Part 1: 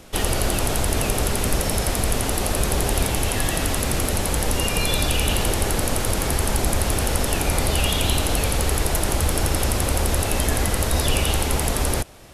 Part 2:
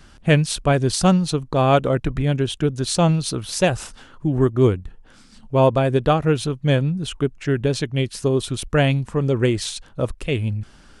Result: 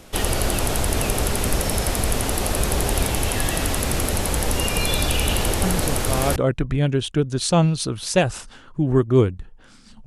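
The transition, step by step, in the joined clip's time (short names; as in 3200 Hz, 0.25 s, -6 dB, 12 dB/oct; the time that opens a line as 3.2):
part 1
5.63 add part 2 from 1.09 s 0.73 s -8.5 dB
6.36 switch to part 2 from 1.82 s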